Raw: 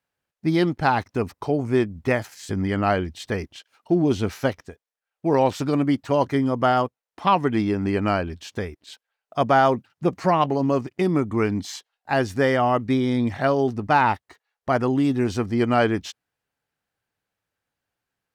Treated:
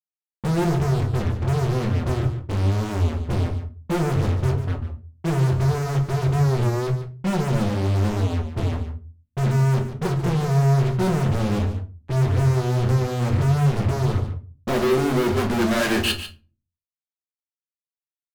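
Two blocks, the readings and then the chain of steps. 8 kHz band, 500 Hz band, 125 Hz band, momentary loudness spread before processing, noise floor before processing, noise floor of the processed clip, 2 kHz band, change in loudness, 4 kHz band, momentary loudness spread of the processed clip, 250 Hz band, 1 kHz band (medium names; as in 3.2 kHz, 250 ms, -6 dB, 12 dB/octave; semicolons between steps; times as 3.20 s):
+5.0 dB, -3.0 dB, +9.5 dB, 10 LU, under -85 dBFS, under -85 dBFS, -3.0 dB, +0.5 dB, +3.0 dB, 8 LU, -2.0 dB, -7.0 dB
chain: low-pass sweep 120 Hz -> 4.6 kHz, 14.07–16.34 s; spectral noise reduction 25 dB; rippled EQ curve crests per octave 1.4, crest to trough 14 dB; compression 4:1, threshold -28 dBFS, peak gain reduction 15.5 dB; fuzz box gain 53 dB, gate -50 dBFS; hum notches 60/120/180/240 Hz; on a send: delay 145 ms -11.5 dB; on the sum: simulated room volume 180 m³, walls furnished, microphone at 0.94 m; warped record 33 1/3 rpm, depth 100 cents; trim -8.5 dB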